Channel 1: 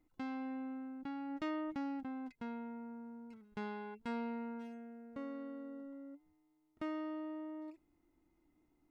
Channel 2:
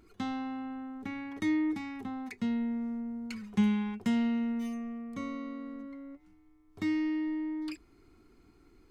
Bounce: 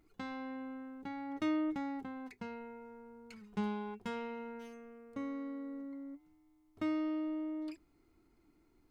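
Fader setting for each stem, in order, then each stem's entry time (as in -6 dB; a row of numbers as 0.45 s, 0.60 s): +2.0 dB, -11.5 dB; 0.00 s, 0.00 s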